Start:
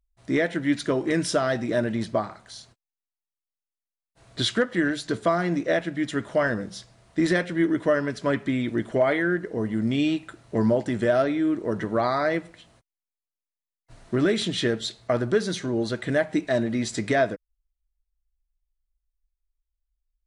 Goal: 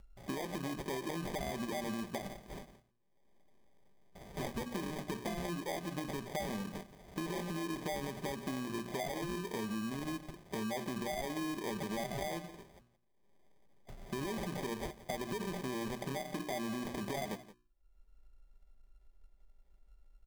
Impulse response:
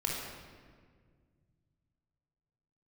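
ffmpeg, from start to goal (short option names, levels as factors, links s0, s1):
-filter_complex "[0:a]lowpass=f=9000:w=0.5412,lowpass=f=9000:w=1.3066,bandreject=f=60:t=h:w=6,bandreject=f=120:t=h:w=6,bandreject=f=180:t=h:w=6,bandreject=f=240:t=h:w=6,bandreject=f=300:t=h:w=6,bandreject=f=360:t=h:w=6,aecho=1:1:5.1:0.42,acompressor=mode=upward:threshold=0.01:ratio=2.5,alimiter=limit=0.0891:level=0:latency=1:release=57,acompressor=threshold=0.0224:ratio=5,acrusher=samples=32:mix=1:aa=0.000001,asplit=2[s0][s1];[s1]aecho=0:1:172:0.15[s2];[s0][s2]amix=inputs=2:normalize=0,volume=0.708"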